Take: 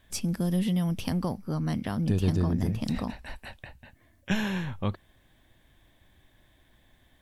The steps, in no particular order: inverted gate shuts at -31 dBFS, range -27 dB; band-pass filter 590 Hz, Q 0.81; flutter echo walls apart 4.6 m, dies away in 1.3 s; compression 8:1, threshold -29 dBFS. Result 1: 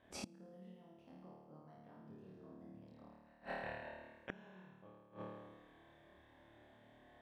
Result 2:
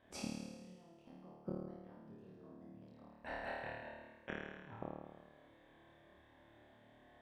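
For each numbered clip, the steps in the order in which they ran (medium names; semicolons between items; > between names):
band-pass filter > compression > flutter echo > inverted gate; band-pass filter > compression > inverted gate > flutter echo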